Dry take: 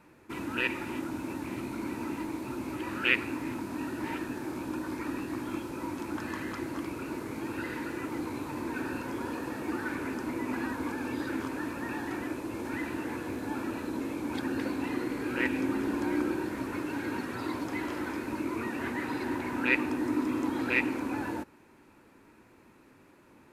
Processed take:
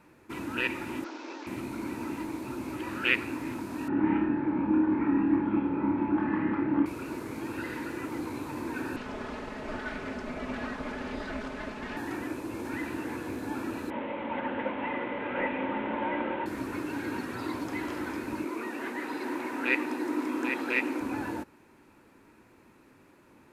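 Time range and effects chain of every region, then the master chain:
1.04–1.47 CVSD 32 kbps + HPF 350 Hz 24 dB/oct
3.88–6.86 LPF 2400 Hz 24 dB/oct + small resonant body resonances 200/290/850 Hz, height 13 dB, ringing for 85 ms + flutter echo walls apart 4.9 m, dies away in 0.37 s
8.96–11.97 minimum comb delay 4.7 ms + LPF 5700 Hz
13.9–16.46 delta modulation 16 kbps, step -37 dBFS + resonant low shelf 400 Hz -8 dB, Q 1.5 + small resonant body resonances 220/560/890/2000 Hz, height 11 dB
18.44–21.01 Chebyshev high-pass 330 Hz + echo 0.791 s -6 dB
whole clip: dry

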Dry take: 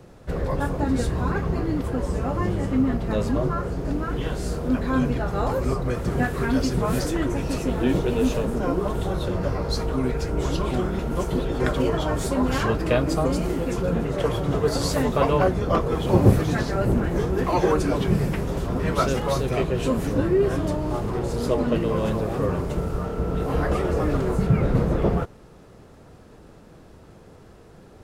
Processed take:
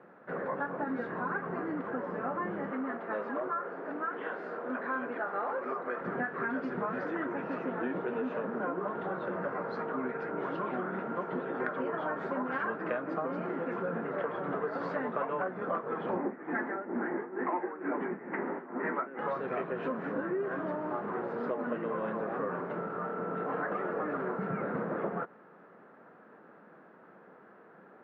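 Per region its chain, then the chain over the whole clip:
2.71–6.01 HPF 330 Hz + overloaded stage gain 20.5 dB
16.17–19.19 tremolo 2.2 Hz, depth 84% + speaker cabinet 210–2500 Hz, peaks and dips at 250 Hz +9 dB, 350 Hz +9 dB, 860 Hz +7 dB, 2000 Hz +9 dB
whole clip: elliptic band-pass 190–1600 Hz, stop band 80 dB; tilt shelf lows -9 dB, about 1100 Hz; compressor 6:1, threshold -30 dBFS

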